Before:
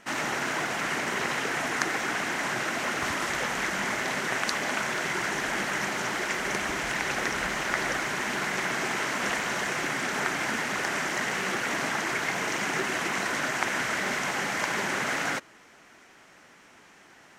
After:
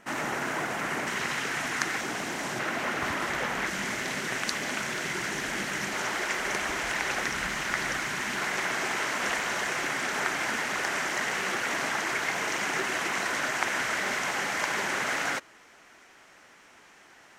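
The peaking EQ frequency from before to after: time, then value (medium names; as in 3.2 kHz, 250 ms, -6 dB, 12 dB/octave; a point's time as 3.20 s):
peaking EQ -5.5 dB 2 oct
4.3 kHz
from 1.07 s 510 Hz
from 2.01 s 1.6 kHz
from 2.59 s 7.6 kHz
from 3.67 s 870 Hz
from 5.93 s 160 Hz
from 7.22 s 510 Hz
from 8.38 s 170 Hz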